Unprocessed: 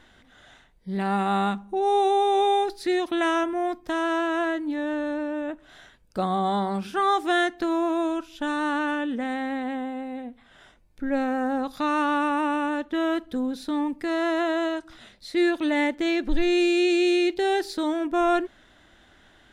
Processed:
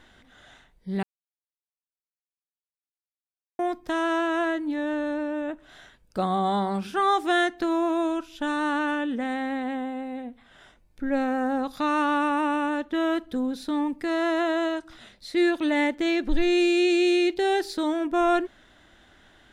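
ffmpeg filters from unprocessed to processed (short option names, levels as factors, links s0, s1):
-filter_complex "[0:a]asplit=3[s0][s1][s2];[s0]atrim=end=1.03,asetpts=PTS-STARTPTS,afade=t=out:st=1.026:d=0.004:c=hsin[s3];[s1]atrim=start=1.03:end=3.59,asetpts=PTS-STARTPTS,volume=0[s4];[s2]atrim=start=3.59,asetpts=PTS-STARTPTS,afade=t=in:d=0.004:c=hsin[s5];[s3][s4][s5]concat=n=3:v=0:a=1"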